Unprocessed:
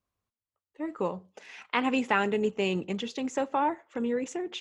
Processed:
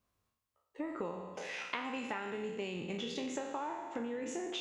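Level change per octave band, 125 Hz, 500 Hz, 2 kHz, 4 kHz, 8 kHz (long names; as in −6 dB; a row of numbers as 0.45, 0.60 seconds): −9.5, −9.5, −9.0, −5.5, −3.5 decibels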